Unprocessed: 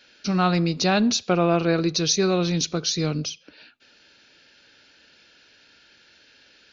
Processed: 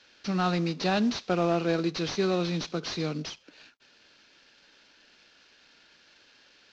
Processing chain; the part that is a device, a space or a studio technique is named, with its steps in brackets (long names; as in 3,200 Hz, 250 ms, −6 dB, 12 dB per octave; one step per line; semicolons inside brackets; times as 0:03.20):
early wireless headset (high-pass filter 160 Hz 24 dB per octave; variable-slope delta modulation 32 kbit/s)
level −4.5 dB